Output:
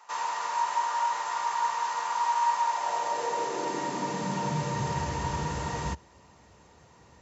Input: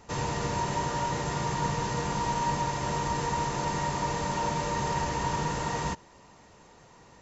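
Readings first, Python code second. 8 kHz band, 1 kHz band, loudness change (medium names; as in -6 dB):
no reading, +2.5 dB, +0.5 dB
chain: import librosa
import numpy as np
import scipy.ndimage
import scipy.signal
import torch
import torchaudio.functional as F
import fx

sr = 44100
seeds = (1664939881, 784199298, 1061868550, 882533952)

y = fx.filter_sweep_highpass(x, sr, from_hz=1000.0, to_hz=67.0, start_s=2.61, end_s=5.31, q=2.5)
y = y * librosa.db_to_amplitude(-2.5)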